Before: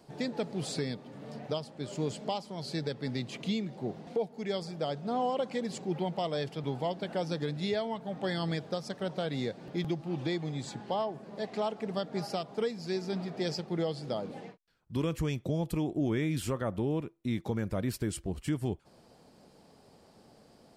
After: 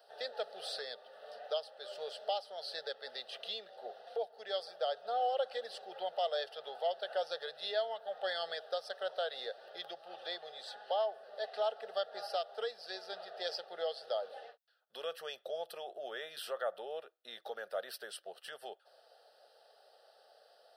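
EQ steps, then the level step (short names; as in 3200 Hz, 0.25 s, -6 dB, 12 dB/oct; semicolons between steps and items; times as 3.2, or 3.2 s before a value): HPF 520 Hz 24 dB/oct; bell 12000 Hz -5.5 dB 0.33 oct; fixed phaser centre 1500 Hz, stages 8; +1.5 dB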